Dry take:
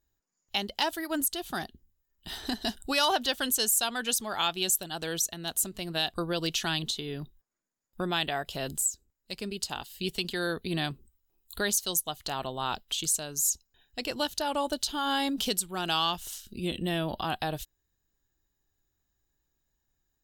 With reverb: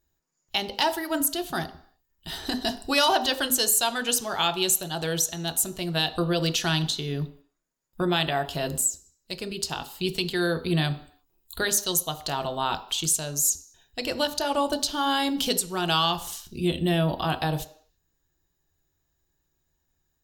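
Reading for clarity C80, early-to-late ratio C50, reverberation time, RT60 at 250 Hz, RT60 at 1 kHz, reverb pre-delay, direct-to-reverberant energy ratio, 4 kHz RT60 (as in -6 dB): 17.0 dB, 14.5 dB, 0.55 s, 0.50 s, 0.55 s, 4 ms, 7.5 dB, 0.60 s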